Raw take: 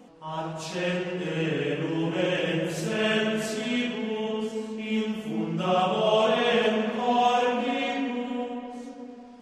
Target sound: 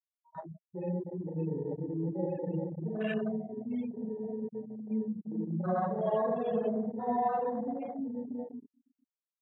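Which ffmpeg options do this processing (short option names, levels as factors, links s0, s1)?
-af "afftfilt=real='re*gte(hypot(re,im),0.141)':imag='im*gte(hypot(re,im),0.141)':win_size=1024:overlap=0.75,afwtdn=0.0316,adynamicequalizer=threshold=0.00708:dfrequency=180:dqfactor=2.7:tfrequency=180:tqfactor=2.7:attack=5:release=100:ratio=0.375:range=3:mode=boostabove:tftype=bell,volume=0.422"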